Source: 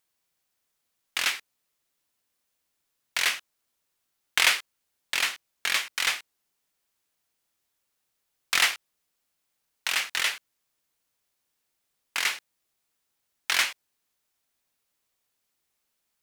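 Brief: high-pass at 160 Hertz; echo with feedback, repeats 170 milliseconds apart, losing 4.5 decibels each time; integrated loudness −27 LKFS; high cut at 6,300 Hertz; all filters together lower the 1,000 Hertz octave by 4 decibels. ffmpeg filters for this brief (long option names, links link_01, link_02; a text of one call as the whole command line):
ffmpeg -i in.wav -af "highpass=160,lowpass=6300,equalizer=frequency=1000:width_type=o:gain=-5.5,aecho=1:1:170|340|510|680|850|1020|1190|1360|1530:0.596|0.357|0.214|0.129|0.0772|0.0463|0.0278|0.0167|0.01,volume=0.5dB" out.wav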